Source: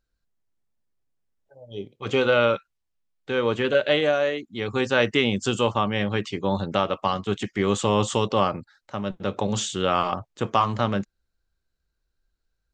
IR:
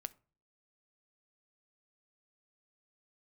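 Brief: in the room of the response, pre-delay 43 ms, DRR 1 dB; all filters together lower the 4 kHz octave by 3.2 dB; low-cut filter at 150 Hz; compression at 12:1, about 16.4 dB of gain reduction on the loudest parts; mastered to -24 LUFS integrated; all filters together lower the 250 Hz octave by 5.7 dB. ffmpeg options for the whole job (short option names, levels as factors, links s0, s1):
-filter_complex "[0:a]highpass=150,equalizer=f=250:t=o:g=-6.5,equalizer=f=4000:t=o:g=-4.5,acompressor=threshold=0.0224:ratio=12,asplit=2[s0][s1];[1:a]atrim=start_sample=2205,adelay=43[s2];[s1][s2]afir=irnorm=-1:irlink=0,volume=1.33[s3];[s0][s3]amix=inputs=2:normalize=0,volume=3.98"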